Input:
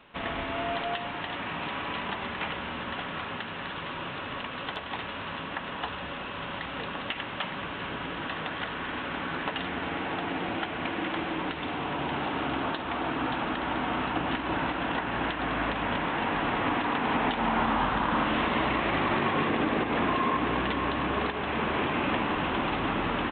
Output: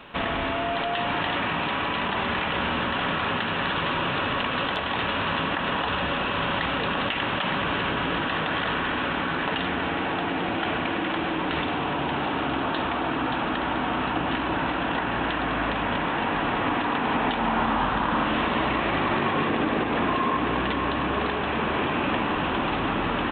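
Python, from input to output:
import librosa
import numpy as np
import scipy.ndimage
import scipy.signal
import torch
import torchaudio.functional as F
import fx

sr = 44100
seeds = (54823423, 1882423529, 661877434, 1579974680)

p1 = fx.notch(x, sr, hz=2100.0, q=22.0)
p2 = fx.over_compress(p1, sr, threshold_db=-36.0, ratio=-0.5)
p3 = p1 + (p2 * 10.0 ** (-1.0 / 20.0))
y = p3 * 10.0 ** (2.0 / 20.0)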